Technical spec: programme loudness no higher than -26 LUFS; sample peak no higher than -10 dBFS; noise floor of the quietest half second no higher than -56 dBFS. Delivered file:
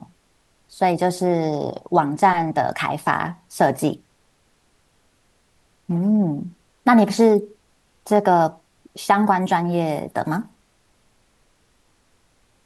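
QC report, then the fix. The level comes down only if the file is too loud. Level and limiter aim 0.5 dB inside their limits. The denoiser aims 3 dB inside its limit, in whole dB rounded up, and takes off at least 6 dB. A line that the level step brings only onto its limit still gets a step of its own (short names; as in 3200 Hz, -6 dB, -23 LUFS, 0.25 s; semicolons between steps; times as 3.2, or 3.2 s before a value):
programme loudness -20.0 LUFS: fail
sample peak -4.5 dBFS: fail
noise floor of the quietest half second -62 dBFS: OK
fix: gain -6.5 dB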